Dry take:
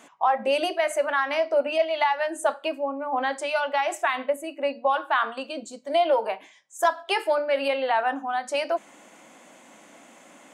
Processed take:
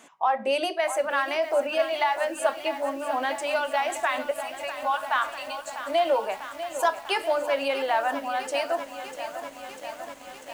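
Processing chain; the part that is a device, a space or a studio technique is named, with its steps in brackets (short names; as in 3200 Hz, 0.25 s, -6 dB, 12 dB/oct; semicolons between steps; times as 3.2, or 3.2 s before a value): exciter from parts (in parallel at -7.5 dB: HPF 4100 Hz 6 dB/oct + soft clip -27.5 dBFS, distortion -16 dB); 4.31–5.86 on the sum: steep high-pass 670 Hz 36 dB/oct; lo-fi delay 0.646 s, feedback 80%, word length 7-bit, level -11 dB; gain -2 dB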